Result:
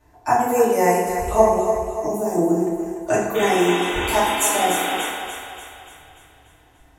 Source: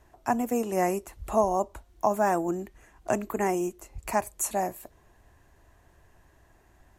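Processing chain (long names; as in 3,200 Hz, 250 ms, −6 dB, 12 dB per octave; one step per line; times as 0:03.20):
noise reduction from a noise print of the clip's start 9 dB
0:01.42–0:02.38: drawn EQ curve 350 Hz 0 dB, 1,300 Hz −27 dB, 7,400 Hz −3 dB
in parallel at −1 dB: downward compressor, threshold −35 dBFS, peak gain reduction 16.5 dB
0:03.34–0:05.07: on the sum: sound drawn into the spectrogram noise 220–3,800 Hz −35 dBFS
on a send: feedback echo with a high-pass in the loop 292 ms, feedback 52%, high-pass 250 Hz, level −8 dB
on the sum: feedback delay network reverb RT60 1.1 s, low-frequency decay 0.9×, high-frequency decay 0.65×, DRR −9 dB
level −1 dB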